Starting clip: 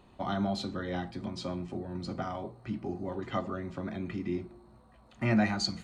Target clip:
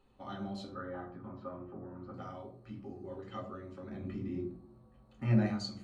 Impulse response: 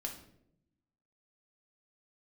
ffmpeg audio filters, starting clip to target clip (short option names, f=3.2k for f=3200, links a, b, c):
-filter_complex "[0:a]asettb=1/sr,asplit=3[a][b][c];[a]atrim=end=0.684[d];[b]atrim=start=0.68:end=2.14,asetpts=PTS-STARTPTS,afade=t=in:d=0.004:c=qsin,afade=t=out:st=1.456:d=0.004:c=qsin,lowpass=f=1.3k:t=q:w=3.1[e];[c]atrim=start=2.136[f];[d][e]acrossfade=d=0.004:c1=hsin:c2=qsin[g];[g][f]acrossfade=d=0.004:c1=qsin:c2=hsin,asettb=1/sr,asplit=3[h][i][j];[h]atrim=end=3.904[k];[i]atrim=start=3.9:end=5.46,asetpts=PTS-STARTPTS,afade=t=in:d=0.004:c=qsin,afade=t=out:st=1.556:d=0.004:c=qsin,lowshelf=f=500:g=8.5[l];[j]atrim=start=5.456[m];[k][l]acrossfade=d=0.004:c1=hsin:c2=qsin[n];[n][m]acrossfade=d=0.004:c1=qsin:c2=hsin[o];[1:a]atrim=start_sample=2205,asetrate=83790,aresample=44100[p];[o][p]afir=irnorm=-1:irlink=0,volume=-4.5dB"